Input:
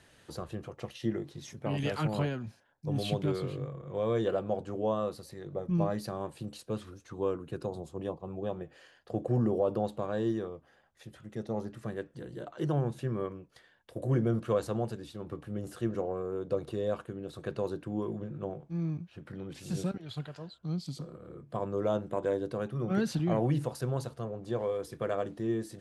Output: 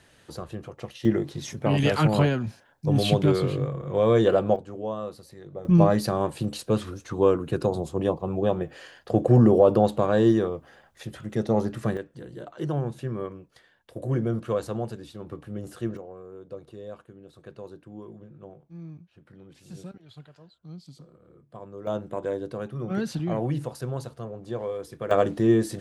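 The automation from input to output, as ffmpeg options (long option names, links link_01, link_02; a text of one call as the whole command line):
ffmpeg -i in.wav -af "asetnsamples=nb_out_samples=441:pad=0,asendcmd='1.05 volume volume 10dB;4.56 volume volume -1dB;5.65 volume volume 11.5dB;11.97 volume volume 2dB;15.97 volume volume -8dB;21.87 volume volume 1dB;25.11 volume volume 12dB',volume=3dB" out.wav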